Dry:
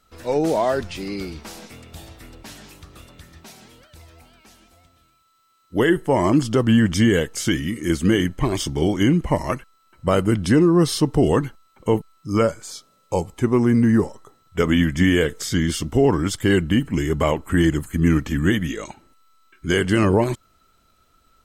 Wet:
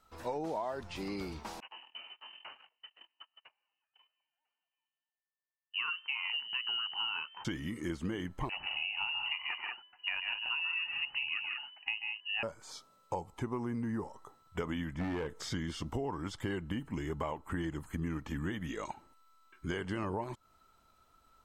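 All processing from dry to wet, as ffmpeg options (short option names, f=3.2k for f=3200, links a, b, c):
-filter_complex "[0:a]asettb=1/sr,asplit=3[a][b][c];[a]atrim=end=1.604[d];[b]atrim=start=1.6:end=7.45,asetpts=PTS-STARTPTS,afade=t=in:d=0.004:c=qsin,afade=t=out:st=5.846:d=0.004:c=qsin,lowpass=f=2.6k:t=q:w=0.5098,lowpass=f=2.6k:t=q:w=0.6013,lowpass=f=2.6k:t=q:w=0.9,lowpass=f=2.6k:t=q:w=2.563,afreqshift=-3100,highpass=f=160:p=1,agate=range=-30dB:threshold=-43dB:ratio=16:release=100:detection=peak[e];[c]atrim=start=7.446[f];[d][e]acrossfade=d=0.004:c1=hsin:c2=qsin[g];[g][f]acrossfade=d=0.004:c1=qsin:c2=hsin,asettb=1/sr,asplit=3[h][i][j];[h]atrim=end=8.494[k];[i]atrim=start=8.49:end=12.43,asetpts=PTS-STARTPTS,afade=t=in:d=0.004:c=qsin,afade=t=out:st=3.936:d=0.004:c=qsin,lowpass=f=2.6k:t=q:w=0.5098,lowpass=f=2.6k:t=q:w=0.6013,lowpass=f=2.6k:t=q:w=0.9,lowpass=f=2.6k:t=q:w=2.563,afreqshift=-3000,aecho=1:1:137|187:0.447|0.398,atrim=end_sample=173754[l];[j]atrim=start=12.426[m];[k][l]acrossfade=d=0.004:c1=hsin:c2=qsin[n];[n][m]acrossfade=d=0.004:c1=qsin:c2=hsin,asettb=1/sr,asplit=3[o][p][q];[o]atrim=end=14.944[r];[p]atrim=start=14.94:end=15.4,asetpts=PTS-STARTPTS,afade=t=in:d=0.004:c=qsin,afade=t=out:st=0.456:d=0.004:c=qsin,acrossover=split=3200[s][t];[t]acompressor=threshold=-45dB:ratio=4:attack=1:release=60[u];[s][u]amix=inputs=2:normalize=0,highshelf=f=2k:g=-5.5,asoftclip=type=hard:threshold=-15.5dB[v];[q]atrim=start=15.396[w];[r][v]acrossfade=d=0.004:c1=hsin:c2=qsin[x];[x][w]acrossfade=d=0.004:c1=qsin:c2=hsin,acrossover=split=6000[y][z];[z]acompressor=threshold=-47dB:ratio=4:attack=1:release=60[aa];[y][aa]amix=inputs=2:normalize=0,equalizer=f=920:t=o:w=0.8:g=10.5,acompressor=threshold=-25dB:ratio=6,volume=-9dB"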